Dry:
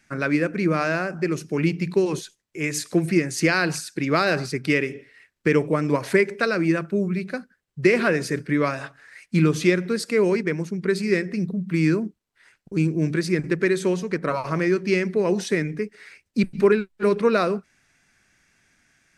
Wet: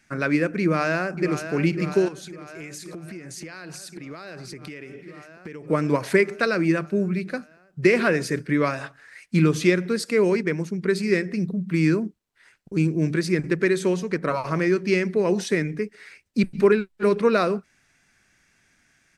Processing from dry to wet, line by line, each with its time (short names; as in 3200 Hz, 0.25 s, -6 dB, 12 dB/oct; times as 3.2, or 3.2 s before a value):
0.62–1.52 echo throw 0.55 s, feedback 80%, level -10 dB
2.08–5.7 compressor 10:1, threshold -34 dBFS